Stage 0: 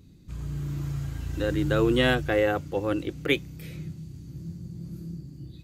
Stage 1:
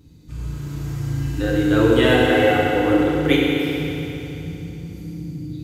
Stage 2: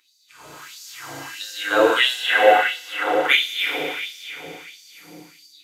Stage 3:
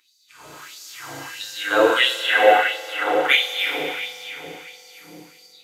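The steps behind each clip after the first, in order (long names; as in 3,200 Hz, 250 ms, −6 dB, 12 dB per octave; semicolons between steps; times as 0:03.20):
feedback delay network reverb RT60 3.3 s, high-frequency decay 0.9×, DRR −6 dB; level +1 dB
auto-filter high-pass sine 1.5 Hz 620–5,100 Hz; automatic gain control gain up to 5 dB
spring reverb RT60 3.3 s, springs 44 ms, chirp 55 ms, DRR 15.5 dB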